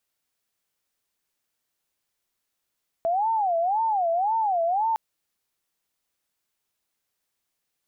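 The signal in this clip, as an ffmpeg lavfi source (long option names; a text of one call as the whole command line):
ffmpeg -f lavfi -i "aevalsrc='0.0944*sin(2*PI*(784.5*t-120.5/(2*PI*1.9)*sin(2*PI*1.9*t)))':duration=1.91:sample_rate=44100" out.wav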